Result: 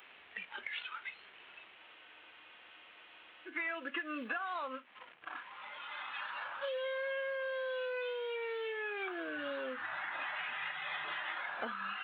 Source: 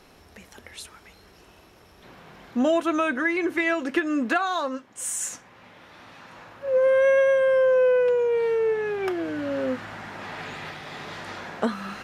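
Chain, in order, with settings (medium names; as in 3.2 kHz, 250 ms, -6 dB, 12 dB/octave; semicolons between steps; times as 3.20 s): CVSD coder 16 kbps; differentiator; in parallel at +1 dB: peak limiter -40.5 dBFS, peak gain reduction 9 dB; on the sum: compression 12:1, threshold -51 dBFS, peak gain reduction 18.5 dB; spectral noise reduction 11 dB; spectral freeze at 1.79 s, 1.68 s; trim +16 dB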